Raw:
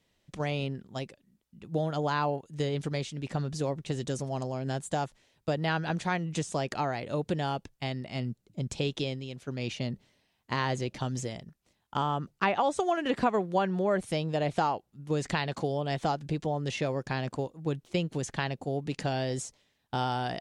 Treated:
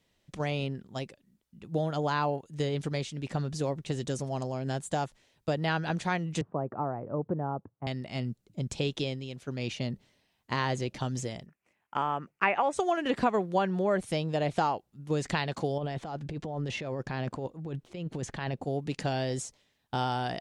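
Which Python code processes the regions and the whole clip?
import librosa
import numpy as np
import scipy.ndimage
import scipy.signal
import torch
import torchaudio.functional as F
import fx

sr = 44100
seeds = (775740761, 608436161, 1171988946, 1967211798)

y = fx.chain(x, sr, fx.cheby1_bandpass(low_hz=100.0, high_hz=1200.0, order=3),
    fx.air_absorb(metres=280.0), at=(6.41, 7.87))
y = fx.chain(y, sr, fx.highpass(hz=340.0, slope=6),
    fx.high_shelf_res(hz=3000.0, db=-7.0, q=3.0), at=(11.46, 12.73))
y = fx.chain(y, sr, fx.high_shelf(hz=4100.0, db=-10.0),
    fx.over_compress(threshold_db=-34.0, ratio=-1.0), at=(15.78, 18.65))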